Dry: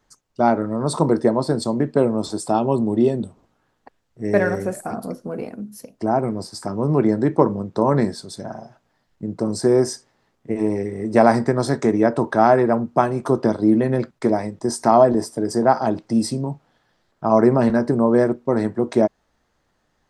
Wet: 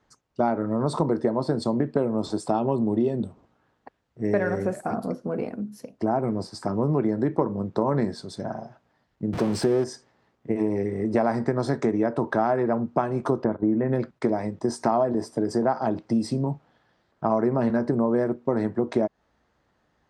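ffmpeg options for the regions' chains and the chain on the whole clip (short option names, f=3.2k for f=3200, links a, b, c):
-filter_complex "[0:a]asettb=1/sr,asplit=3[a][b][c];[a]atrim=end=9.334[d];[b]atrim=start=9.33:end=9.84,asetpts=PTS-STARTPTS,afade=t=in:d=0.004:c=qsin,afade=t=out:st=0.506:d=0.004:c=qsin,aeval=exprs='val(0)+0.5*0.0562*sgn(val(0))':c=same,bandreject=f=7k:w=20[e];[c]atrim=start=9.836[f];[d][e]acrossfade=d=0.004:c1=hsin:c2=qsin[g];[g][f]acrossfade=d=0.004:c1=qsin:c2=hsin,asettb=1/sr,asplit=3[h][i][j];[h]atrim=end=13.444[k];[i]atrim=start=13.44:end=13.93,asetpts=PTS-STARTPTS,afade=t=in:d=0.004:c=qsin,afade=t=out:st=0.486:d=0.004:c=qsin,lowpass=f=2.2k:w=0.5412,lowpass=f=2.2k:w=1.3066,agate=range=-33dB:threshold=-23dB:ratio=3:release=100:detection=peak[l];[j]atrim=start=13.926[m];[k][l]acrossfade=d=0.004:c1=hsin:c2=qsin[n];[n][m]acrossfade=d=0.004:c1=qsin:c2=hsin,highpass=43,aemphasis=mode=reproduction:type=50fm,acompressor=threshold=-20dB:ratio=4"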